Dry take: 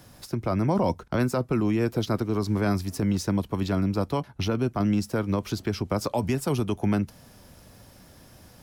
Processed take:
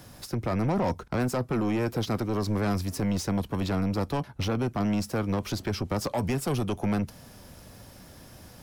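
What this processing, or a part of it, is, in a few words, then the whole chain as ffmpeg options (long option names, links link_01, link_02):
saturation between pre-emphasis and de-emphasis: -af "highshelf=frequency=2700:gain=8.5,asoftclip=type=tanh:threshold=-24.5dB,highshelf=frequency=2700:gain=-8.5,volume=2.5dB"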